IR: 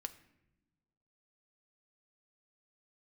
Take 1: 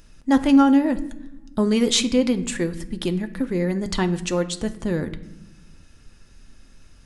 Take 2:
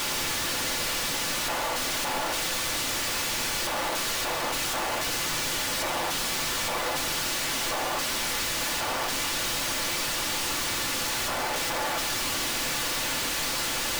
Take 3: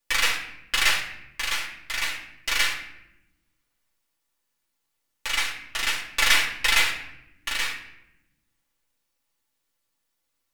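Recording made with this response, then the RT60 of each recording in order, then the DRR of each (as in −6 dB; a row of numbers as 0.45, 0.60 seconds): 1; non-exponential decay, 0.90 s, 0.85 s; 7.5, 2.5, −4.5 decibels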